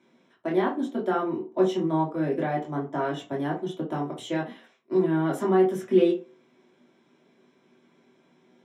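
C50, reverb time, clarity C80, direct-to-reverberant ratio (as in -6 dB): 9.0 dB, 0.40 s, 16.0 dB, -4.0 dB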